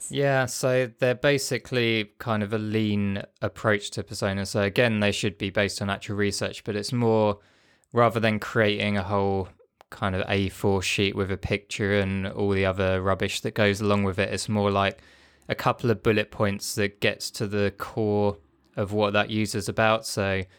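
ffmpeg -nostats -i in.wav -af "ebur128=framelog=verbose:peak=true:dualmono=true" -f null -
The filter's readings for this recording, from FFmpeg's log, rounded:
Integrated loudness:
  I:         -22.2 LUFS
  Threshold: -32.5 LUFS
Loudness range:
  LRA:         1.6 LU
  Threshold: -42.6 LUFS
  LRA low:   -23.5 LUFS
  LRA high:  -21.8 LUFS
True peak:
  Peak:       -7.7 dBFS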